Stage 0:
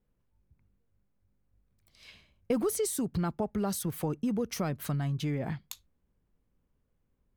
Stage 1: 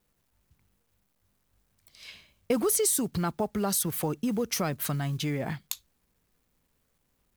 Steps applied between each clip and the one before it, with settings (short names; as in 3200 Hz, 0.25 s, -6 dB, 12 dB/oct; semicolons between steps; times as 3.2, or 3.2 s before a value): companded quantiser 8-bit; tilt +1.5 dB/oct; gain +4.5 dB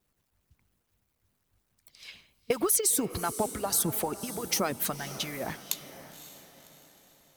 harmonic-percussive split harmonic -17 dB; diffused feedback echo 0.548 s, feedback 44%, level -13 dB; gain +2.5 dB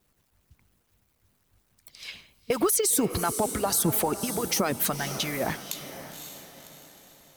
limiter -21 dBFS, peak gain reduction 10 dB; gain +6.5 dB